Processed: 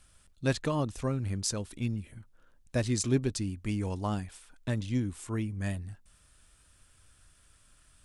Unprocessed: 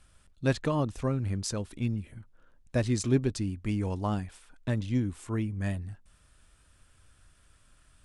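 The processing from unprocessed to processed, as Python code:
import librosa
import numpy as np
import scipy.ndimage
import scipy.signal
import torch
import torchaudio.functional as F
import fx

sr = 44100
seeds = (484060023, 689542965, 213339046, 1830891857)

y = fx.high_shelf(x, sr, hz=3700.0, db=7.0)
y = y * librosa.db_to_amplitude(-2.0)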